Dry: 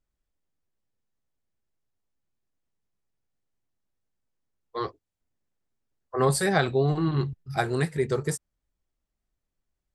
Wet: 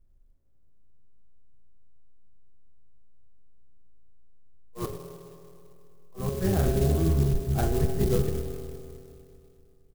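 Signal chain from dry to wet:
sub-octave generator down 1 octave, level −1 dB
spectral tilt −3.5 dB per octave
reversed playback
downward compressor 12 to 1, threshold −23 dBFS, peak gain reduction 17 dB
reversed playback
double-tracking delay 37 ms −6 dB
volume swells 167 ms
on a send at −5 dB: parametric band 470 Hz +13.5 dB 0.36 octaves + convolution reverb RT60 2.7 s, pre-delay 7 ms
on the sum: converter with an unsteady clock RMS 0.076 ms
level +1.5 dB

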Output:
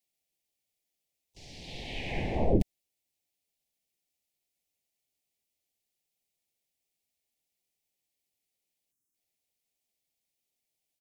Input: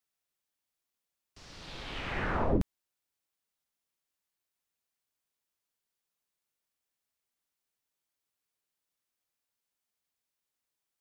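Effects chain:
elliptic band-stop filter 810–2,200 Hz
time-frequency box erased 0:08.91–0:09.14, 410–6,000 Hz
pitch-shifted copies added −3 semitones −4 dB, +4 semitones −15 dB
level +1.5 dB

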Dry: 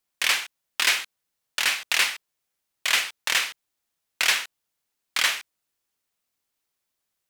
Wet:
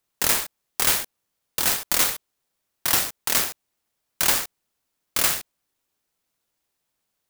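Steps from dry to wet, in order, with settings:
in parallel at −2 dB: brickwall limiter −17 dBFS, peak gain reduction 10 dB
on the sum: converter with an unsteady clock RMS 0.14 ms
level −1 dB

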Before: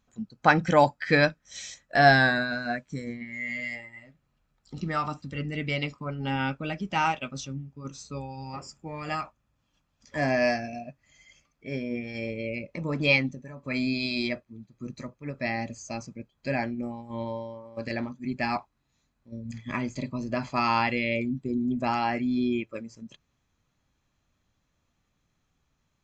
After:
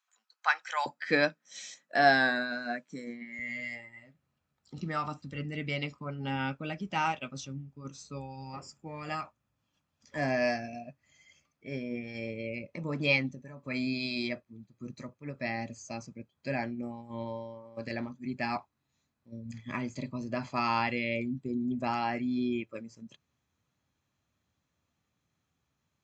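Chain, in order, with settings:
high-pass filter 980 Hz 24 dB per octave, from 0:00.86 190 Hz, from 0:03.39 67 Hz
level −4.5 dB

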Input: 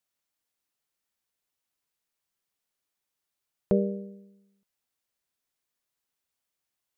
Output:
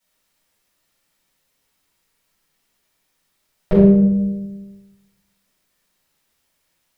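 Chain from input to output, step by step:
in parallel at +3 dB: downward compressor, threshold −38 dBFS, peak gain reduction 18 dB
on the sum: rectangular room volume 300 cubic metres, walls mixed, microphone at 6.7 metres
level −6 dB

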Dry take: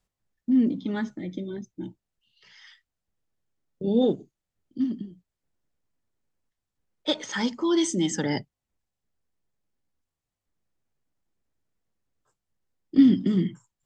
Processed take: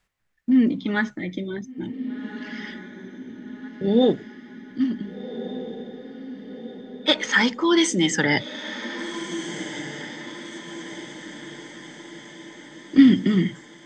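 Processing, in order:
parametric band 1,900 Hz +11.5 dB 1.6 octaves
on a send: feedback delay with all-pass diffusion 1,537 ms, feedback 55%, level −11 dB
on the sum: level +3 dB

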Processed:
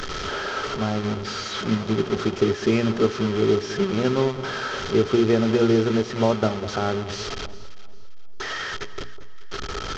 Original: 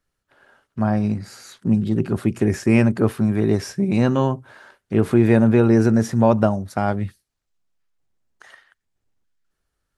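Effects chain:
linear delta modulator 32 kbit/s, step −18.5 dBFS
mains-hum notches 60/120/180/240/300/360/420 Hz
hollow resonant body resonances 410/1,300/3,200 Hz, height 12 dB, ringing for 45 ms
on a send: delay that swaps between a low-pass and a high-pass 200 ms, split 1,100 Hz, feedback 55%, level −12 dB
on the sum: transient designer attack +2 dB, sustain −5 dB
level −6.5 dB

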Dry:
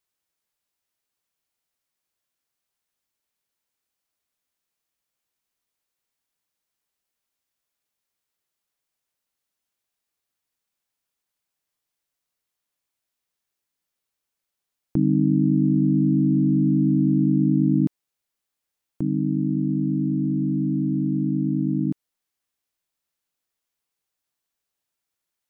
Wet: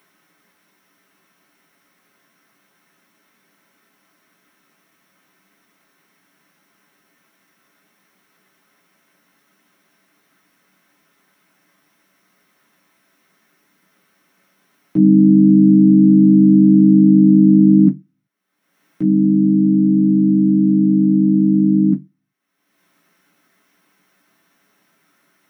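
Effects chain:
upward compression, threshold −40 dBFS
convolution reverb RT60 0.15 s, pre-delay 3 ms, DRR −4.5 dB
level −8.5 dB

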